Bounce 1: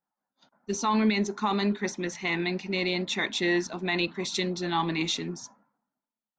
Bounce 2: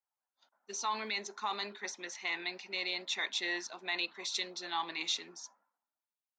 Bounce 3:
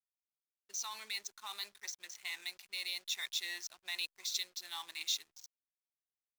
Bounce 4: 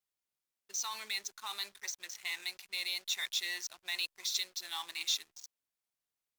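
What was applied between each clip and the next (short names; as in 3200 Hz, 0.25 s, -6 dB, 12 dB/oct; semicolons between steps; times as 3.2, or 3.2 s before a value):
HPF 630 Hz 12 dB/oct; dynamic EQ 4600 Hz, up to +4 dB, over -46 dBFS, Q 1.1; gain -7 dB
low-pass opened by the level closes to 1800 Hz, open at -36 dBFS; backlash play -42.5 dBFS; pre-emphasis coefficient 0.97; gain +4.5 dB
in parallel at -3.5 dB: soft clip -35 dBFS, distortion -10 dB; on the sum: wow and flutter 29 cents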